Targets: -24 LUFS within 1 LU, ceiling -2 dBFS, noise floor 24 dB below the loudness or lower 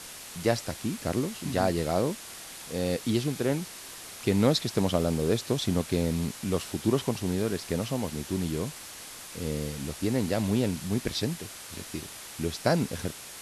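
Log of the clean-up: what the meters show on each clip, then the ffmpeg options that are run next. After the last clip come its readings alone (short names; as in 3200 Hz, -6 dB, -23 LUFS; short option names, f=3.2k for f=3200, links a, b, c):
noise floor -44 dBFS; noise floor target -54 dBFS; loudness -29.5 LUFS; peak -10.0 dBFS; loudness target -24.0 LUFS
-> -af "afftdn=nr=10:nf=-44"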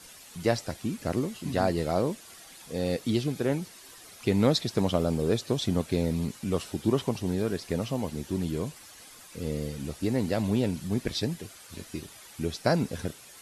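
noise floor -50 dBFS; noise floor target -54 dBFS
-> -af "afftdn=nr=6:nf=-50"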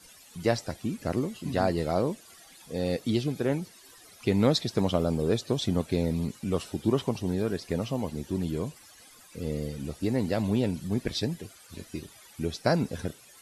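noise floor -54 dBFS; loudness -29.5 LUFS; peak -10.0 dBFS; loudness target -24.0 LUFS
-> -af "volume=5.5dB"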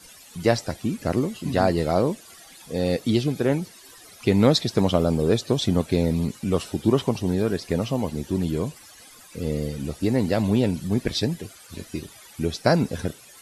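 loudness -24.0 LUFS; peak -4.5 dBFS; noise floor -48 dBFS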